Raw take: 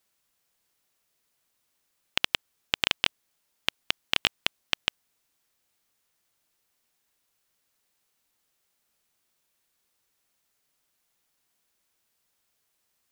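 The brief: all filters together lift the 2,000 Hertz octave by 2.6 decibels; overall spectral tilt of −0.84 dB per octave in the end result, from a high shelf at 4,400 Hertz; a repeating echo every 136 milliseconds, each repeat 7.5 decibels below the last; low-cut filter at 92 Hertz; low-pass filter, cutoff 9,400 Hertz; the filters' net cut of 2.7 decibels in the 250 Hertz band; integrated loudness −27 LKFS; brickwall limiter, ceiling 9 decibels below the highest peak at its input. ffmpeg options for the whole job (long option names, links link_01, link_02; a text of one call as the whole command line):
ffmpeg -i in.wav -af "highpass=92,lowpass=9400,equalizer=frequency=250:width_type=o:gain=-3.5,equalizer=frequency=2000:width_type=o:gain=5.5,highshelf=frequency=4400:gain=-7.5,alimiter=limit=-11.5dB:level=0:latency=1,aecho=1:1:136|272|408|544|680:0.422|0.177|0.0744|0.0312|0.0131,volume=10dB" out.wav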